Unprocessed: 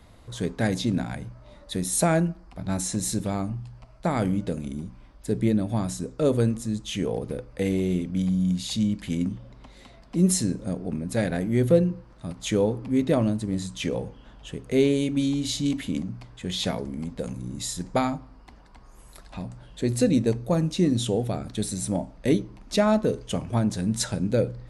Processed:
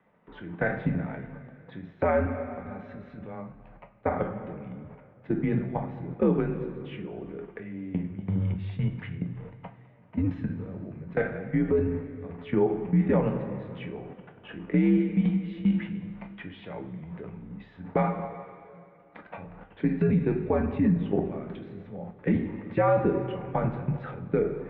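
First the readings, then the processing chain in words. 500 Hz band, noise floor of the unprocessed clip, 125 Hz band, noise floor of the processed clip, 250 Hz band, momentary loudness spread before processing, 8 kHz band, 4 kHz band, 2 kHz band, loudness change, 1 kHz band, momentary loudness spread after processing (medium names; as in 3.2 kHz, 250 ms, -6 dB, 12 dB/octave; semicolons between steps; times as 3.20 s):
-2.5 dB, -50 dBFS, -3.0 dB, -54 dBFS, -3.5 dB, 14 LU, under -40 dB, under -15 dB, -1.0 dB, -2.5 dB, -0.5 dB, 19 LU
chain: level held to a coarse grid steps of 23 dB; two-slope reverb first 0.3 s, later 2.5 s, from -18 dB, DRR 3.5 dB; peak limiter -22.5 dBFS, peak gain reduction 11 dB; mistuned SSB -86 Hz 220–2500 Hz; dynamic bell 850 Hz, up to +4 dB, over -59 dBFS, Q 3.7; trim +8.5 dB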